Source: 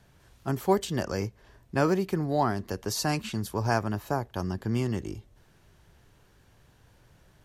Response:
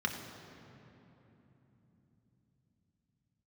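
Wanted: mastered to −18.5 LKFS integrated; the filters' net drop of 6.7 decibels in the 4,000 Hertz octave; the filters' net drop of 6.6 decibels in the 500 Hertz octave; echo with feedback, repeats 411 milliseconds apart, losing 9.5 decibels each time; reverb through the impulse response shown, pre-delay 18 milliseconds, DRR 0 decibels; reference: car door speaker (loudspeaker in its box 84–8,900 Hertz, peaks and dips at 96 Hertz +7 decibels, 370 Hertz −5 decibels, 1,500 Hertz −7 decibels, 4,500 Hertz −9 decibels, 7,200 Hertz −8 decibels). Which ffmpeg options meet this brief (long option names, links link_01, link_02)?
-filter_complex "[0:a]equalizer=frequency=500:width_type=o:gain=-6,equalizer=frequency=4000:width_type=o:gain=-3,aecho=1:1:411|822|1233|1644:0.335|0.111|0.0365|0.012,asplit=2[link_01][link_02];[1:a]atrim=start_sample=2205,adelay=18[link_03];[link_02][link_03]afir=irnorm=-1:irlink=0,volume=-6dB[link_04];[link_01][link_04]amix=inputs=2:normalize=0,highpass=84,equalizer=frequency=96:width_type=q:width=4:gain=7,equalizer=frequency=370:width_type=q:width=4:gain=-5,equalizer=frequency=1500:width_type=q:width=4:gain=-7,equalizer=frequency=4500:width_type=q:width=4:gain=-9,equalizer=frequency=7200:width_type=q:width=4:gain=-8,lowpass=frequency=8900:width=0.5412,lowpass=frequency=8900:width=1.3066,volume=8.5dB"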